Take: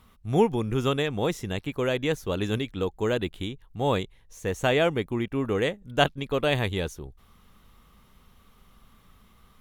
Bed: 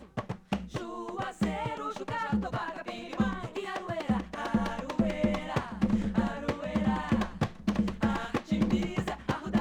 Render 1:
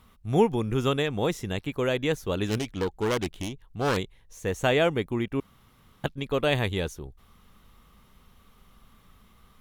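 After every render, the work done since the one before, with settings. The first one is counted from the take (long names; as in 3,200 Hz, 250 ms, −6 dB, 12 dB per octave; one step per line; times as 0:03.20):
0:02.47–0:03.97: phase distortion by the signal itself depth 0.4 ms
0:05.40–0:06.04: fill with room tone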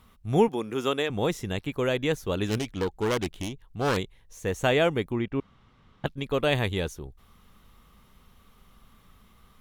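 0:00.48–0:01.10: high-pass filter 270 Hz
0:05.12–0:06.06: high-frequency loss of the air 130 metres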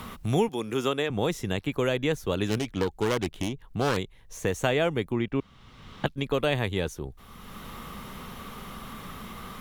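multiband upward and downward compressor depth 70%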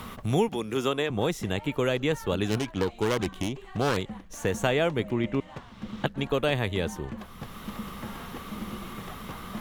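mix in bed −11.5 dB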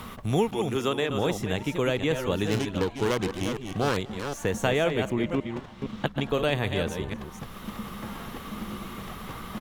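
delay that plays each chunk backwards 255 ms, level −7 dB
single-tap delay 231 ms −22 dB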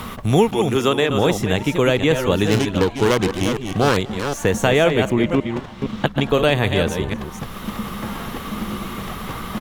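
level +9 dB
brickwall limiter −2 dBFS, peak gain reduction 2 dB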